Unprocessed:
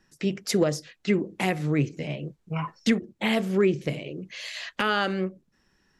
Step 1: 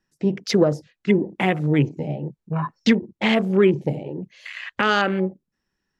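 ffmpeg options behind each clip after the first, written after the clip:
-af "afwtdn=0.0158,volume=1.88"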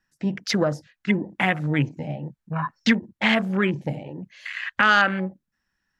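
-af "equalizer=f=160:t=o:w=0.67:g=-3,equalizer=f=400:t=o:w=0.67:g=-11,equalizer=f=1600:t=o:w=0.67:g=6"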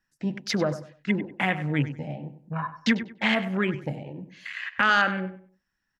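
-filter_complex "[0:a]asplit=2[s0][s1];[s1]adelay=97,lowpass=f=3100:p=1,volume=0.251,asplit=2[s2][s3];[s3]adelay=97,lowpass=f=3100:p=1,volume=0.28,asplit=2[s4][s5];[s5]adelay=97,lowpass=f=3100:p=1,volume=0.28[s6];[s0][s2][s4][s6]amix=inputs=4:normalize=0,volume=0.668"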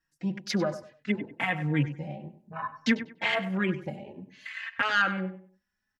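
-filter_complex "[0:a]asplit=2[s0][s1];[s1]adelay=3.9,afreqshift=0.61[s2];[s0][s2]amix=inputs=2:normalize=1"

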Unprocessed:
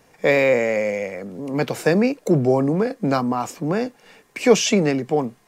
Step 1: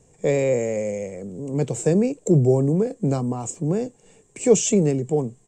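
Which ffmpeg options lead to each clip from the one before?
-af "firequalizer=gain_entry='entry(120,0);entry(250,-10);entry(400,-5);entry(580,-12);entry(1400,-23);entry(3000,-16);entry(4800,-19);entry(7700,6);entry(11000,-27)':delay=0.05:min_phase=1,volume=2"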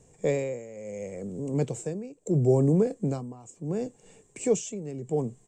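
-af "tremolo=f=0.73:d=0.86,volume=0.841"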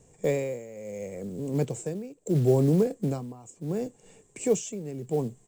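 -af "acrusher=bits=7:mode=log:mix=0:aa=0.000001"

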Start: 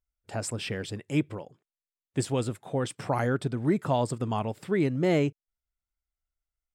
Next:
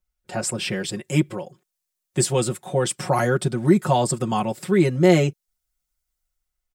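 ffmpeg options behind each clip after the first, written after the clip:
-filter_complex "[0:a]aecho=1:1:5.5:0.93,acrossover=split=330|980|4900[s0][s1][s2][s3];[s3]dynaudnorm=f=210:g=7:m=2.51[s4];[s0][s1][s2][s4]amix=inputs=4:normalize=0,volume=1.68"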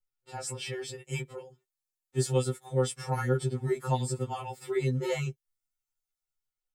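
-af "afftfilt=real='re*2.45*eq(mod(b,6),0)':imag='im*2.45*eq(mod(b,6),0)':win_size=2048:overlap=0.75,volume=0.398"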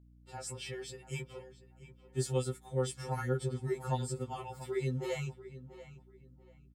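-filter_complex "[0:a]aeval=exprs='val(0)+0.00224*(sin(2*PI*60*n/s)+sin(2*PI*2*60*n/s)/2+sin(2*PI*3*60*n/s)/3+sin(2*PI*4*60*n/s)/4+sin(2*PI*5*60*n/s)/5)':c=same,asplit=2[s0][s1];[s1]adelay=688,lowpass=f=3600:p=1,volume=0.178,asplit=2[s2][s3];[s3]adelay=688,lowpass=f=3600:p=1,volume=0.26,asplit=2[s4][s5];[s5]adelay=688,lowpass=f=3600:p=1,volume=0.26[s6];[s0][s2][s4][s6]amix=inputs=4:normalize=0,volume=0.531"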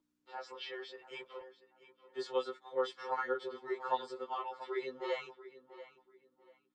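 -af "highpass=f=420:w=0.5412,highpass=f=420:w=1.3066,equalizer=f=440:t=q:w=4:g=-4,equalizer=f=720:t=q:w=4:g=-6,equalizer=f=1100:t=q:w=4:g=7,equalizer=f=2500:t=q:w=4:g=-8,lowpass=f=4000:w=0.5412,lowpass=f=4000:w=1.3066,volume=1.58" -ar 48000 -c:a libopus -b:a 24k

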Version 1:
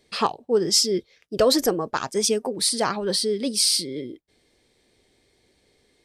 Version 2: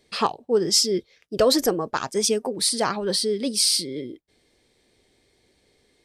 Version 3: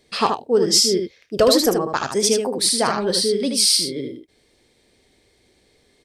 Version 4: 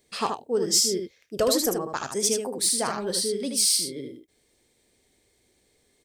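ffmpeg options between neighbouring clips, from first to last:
-af anull
-af "aecho=1:1:35|77:0.141|0.531,volume=1.41"
-af "aexciter=amount=1.9:drive=7.6:freq=6400,volume=0.398"

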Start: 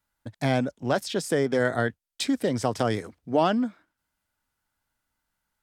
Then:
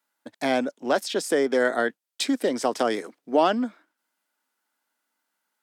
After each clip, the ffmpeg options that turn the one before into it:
-af "highpass=f=250:w=0.5412,highpass=f=250:w=1.3066,volume=1.33"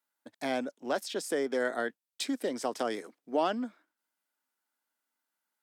-af "highshelf=f=10000:g=4.5,volume=0.376"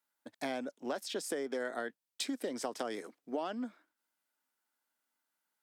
-af "acompressor=threshold=0.0224:ratio=6"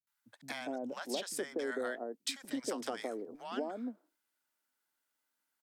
-filter_complex "[0:a]acrossover=split=180|820[s0][s1][s2];[s2]adelay=70[s3];[s1]adelay=240[s4];[s0][s4][s3]amix=inputs=3:normalize=0,volume=1.12"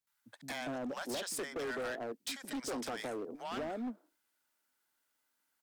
-af "asoftclip=type=hard:threshold=0.0112,volume=1.5"

